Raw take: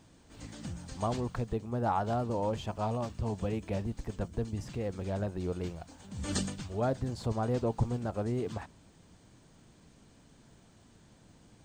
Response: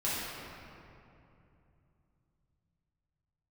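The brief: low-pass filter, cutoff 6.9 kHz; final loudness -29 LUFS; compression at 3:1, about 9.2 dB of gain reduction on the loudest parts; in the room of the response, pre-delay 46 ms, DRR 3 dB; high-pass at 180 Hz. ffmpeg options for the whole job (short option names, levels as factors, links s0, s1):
-filter_complex "[0:a]highpass=180,lowpass=6900,acompressor=threshold=0.0112:ratio=3,asplit=2[s0][s1];[1:a]atrim=start_sample=2205,adelay=46[s2];[s1][s2]afir=irnorm=-1:irlink=0,volume=0.282[s3];[s0][s3]amix=inputs=2:normalize=0,volume=3.98"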